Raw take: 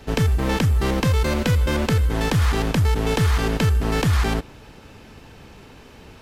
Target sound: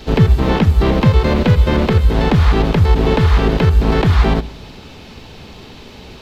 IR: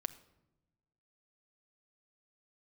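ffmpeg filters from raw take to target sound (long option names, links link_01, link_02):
-filter_complex "[0:a]acrossover=split=2500[link_01][link_02];[link_02]acompressor=threshold=-45dB:ratio=4:attack=1:release=60[link_03];[link_01][link_03]amix=inputs=2:normalize=0,equalizer=frequency=1600:width_type=o:width=0.67:gain=-4,equalizer=frequency=4000:width_type=o:width=0.67:gain=8,equalizer=frequency=10000:width_type=o:width=0.67:gain=-7,asplit=3[link_04][link_05][link_06];[link_05]asetrate=37084,aresample=44100,atempo=1.18921,volume=-6dB[link_07];[link_06]asetrate=52444,aresample=44100,atempo=0.840896,volume=-13dB[link_08];[link_04][link_07][link_08]amix=inputs=3:normalize=0,asplit=2[link_09][link_10];[1:a]atrim=start_sample=2205,asetrate=52920,aresample=44100[link_11];[link_10][link_11]afir=irnorm=-1:irlink=0,volume=2dB[link_12];[link_09][link_12]amix=inputs=2:normalize=0,volume=1dB"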